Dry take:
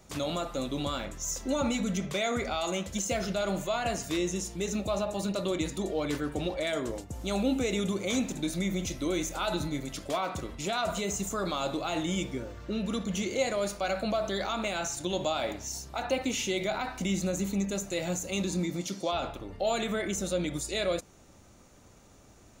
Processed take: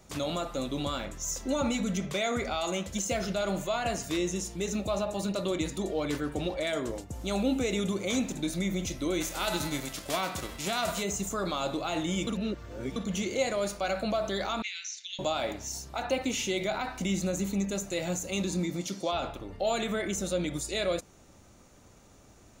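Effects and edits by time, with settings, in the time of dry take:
9.2–11.02 spectral whitening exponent 0.6
12.27–12.96 reverse
14.62–15.19 elliptic band-pass 2000–6100 Hz, stop band 50 dB

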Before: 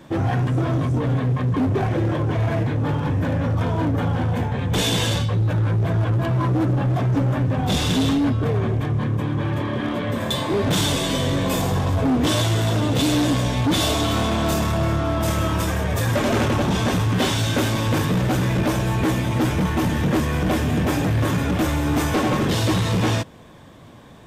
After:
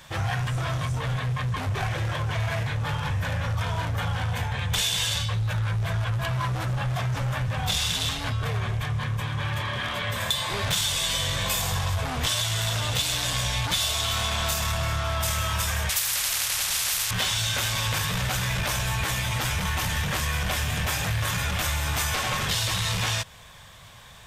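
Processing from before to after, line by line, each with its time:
15.89–17.11 spectral compressor 4:1
whole clip: passive tone stack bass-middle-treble 10-0-10; compressor, threshold -31 dBFS; gain +8.5 dB

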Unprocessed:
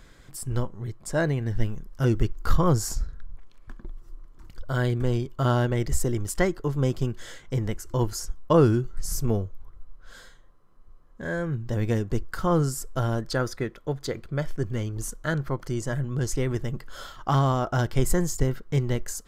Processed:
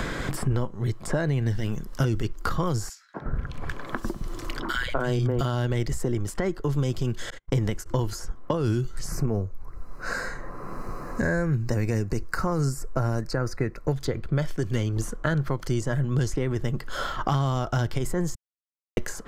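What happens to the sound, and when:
2.89–5.41 three bands offset in time highs, mids, lows 0.25/0.36 s, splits 180/1800 Hz
7.3–7.88 gate -39 dBFS, range -45 dB
9.09–13.93 Butterworth band-stop 3300 Hz, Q 2.3
18.35–18.97 mute
whole clip: limiter -18 dBFS; high shelf 8400 Hz -5.5 dB; three-band squash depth 100%; gain +1.5 dB

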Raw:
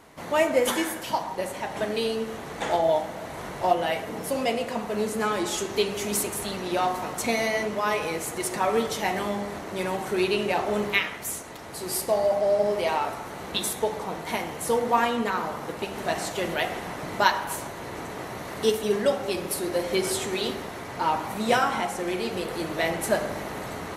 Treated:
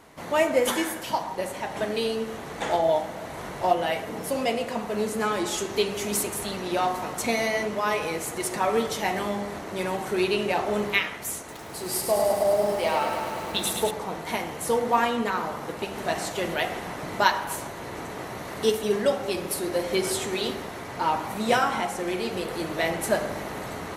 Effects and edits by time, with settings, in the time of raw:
11.38–13.91 lo-fi delay 0.105 s, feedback 80%, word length 8-bit, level -6 dB

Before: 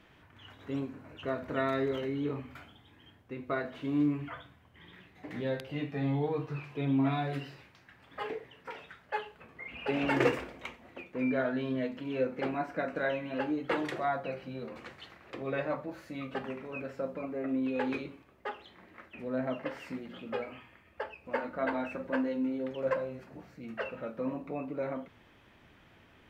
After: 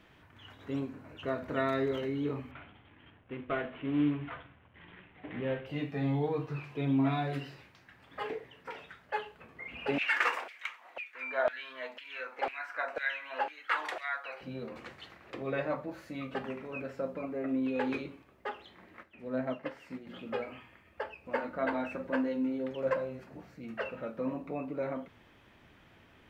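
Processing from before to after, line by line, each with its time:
2.51–5.66 CVSD 16 kbps
9.98–14.41 LFO high-pass saw down 2 Hz 670–2500 Hz
19.03–20.07 upward expander, over -46 dBFS

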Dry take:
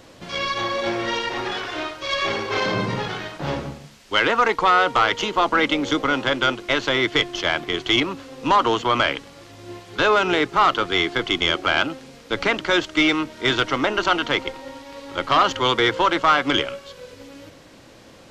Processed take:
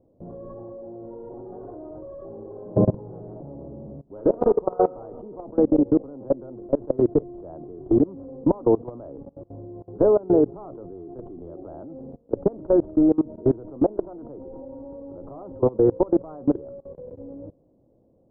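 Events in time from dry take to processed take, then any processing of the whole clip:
2.34–4.97 reverb throw, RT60 0.92 s, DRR 2 dB
whole clip: inverse Chebyshev low-pass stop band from 2100 Hz, stop band 60 dB; level quantiser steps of 23 dB; gain +7.5 dB

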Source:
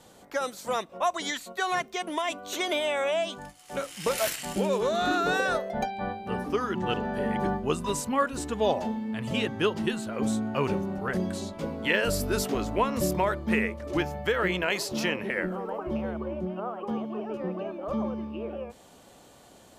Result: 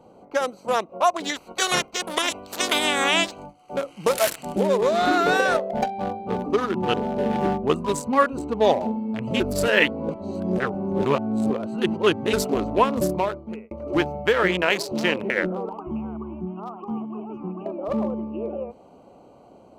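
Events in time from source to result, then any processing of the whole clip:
1.35–3.43 spectral limiter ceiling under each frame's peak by 23 dB
9.4–12.33 reverse
12.96–13.71 fade out
15.69–17.66 fixed phaser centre 2700 Hz, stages 8
whole clip: Wiener smoothing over 25 samples; low shelf 140 Hz -10.5 dB; gain +8 dB

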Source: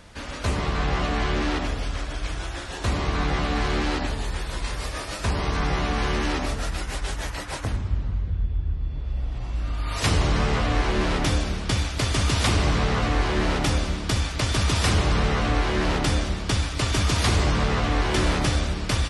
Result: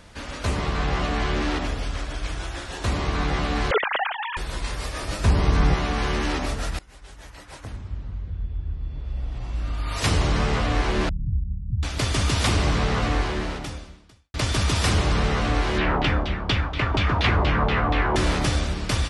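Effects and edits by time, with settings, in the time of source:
3.71–4.37 sine-wave speech
5.02–5.74 low shelf 340 Hz +7.5 dB
6.79–9.66 fade in, from -22.5 dB
11.09–11.83 inverse Chebyshev low-pass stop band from 520 Hz, stop band 60 dB
13.14–14.34 fade out quadratic
15.78–18.16 LFO low-pass saw down 4.2 Hz 770–3700 Hz

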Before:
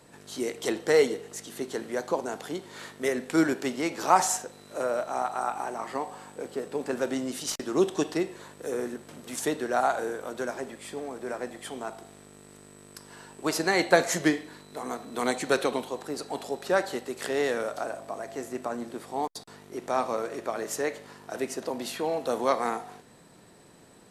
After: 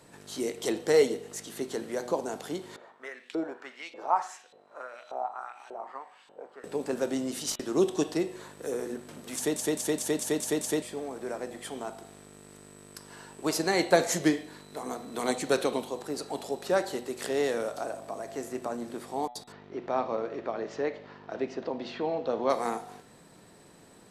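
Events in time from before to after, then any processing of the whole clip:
2.76–6.64 LFO band-pass saw up 1.7 Hz 480–3800 Hz
9.35 stutter in place 0.21 s, 7 plays
19.52–22.5 Bessel low-pass 3100 Hz, order 6
whole clip: dynamic EQ 1600 Hz, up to -5 dB, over -43 dBFS, Q 0.91; de-hum 122.2 Hz, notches 33

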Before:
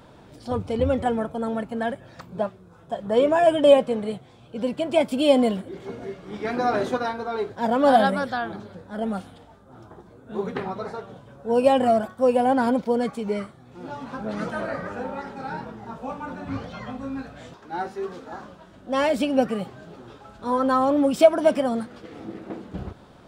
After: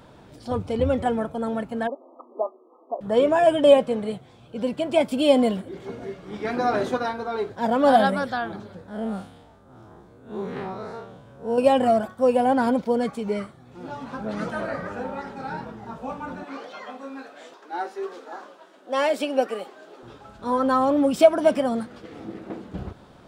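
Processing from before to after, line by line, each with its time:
1.87–3.01 brick-wall FIR band-pass 240–1300 Hz
8.88–11.58 time blur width 92 ms
16.43–20.03 HPF 320 Hz 24 dB/oct

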